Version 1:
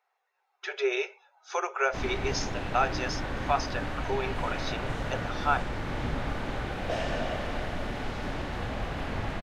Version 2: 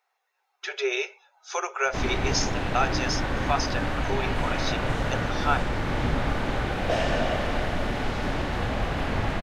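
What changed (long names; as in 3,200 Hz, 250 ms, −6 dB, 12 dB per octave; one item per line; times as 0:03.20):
speech: add high-shelf EQ 3,500 Hz +10 dB
background +6.0 dB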